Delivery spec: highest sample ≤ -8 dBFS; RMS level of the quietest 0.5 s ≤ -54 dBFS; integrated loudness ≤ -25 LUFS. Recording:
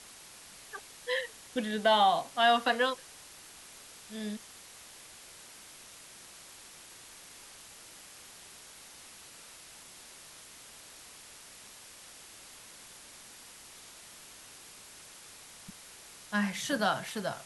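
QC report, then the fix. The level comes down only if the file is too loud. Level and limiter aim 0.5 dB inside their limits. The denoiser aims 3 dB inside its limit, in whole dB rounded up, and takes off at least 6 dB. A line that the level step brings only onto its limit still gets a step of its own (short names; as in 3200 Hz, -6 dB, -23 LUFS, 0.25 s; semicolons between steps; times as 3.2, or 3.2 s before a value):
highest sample -12.5 dBFS: OK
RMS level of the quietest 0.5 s -52 dBFS: fail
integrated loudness -30.5 LUFS: OK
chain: denoiser 6 dB, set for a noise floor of -52 dBFS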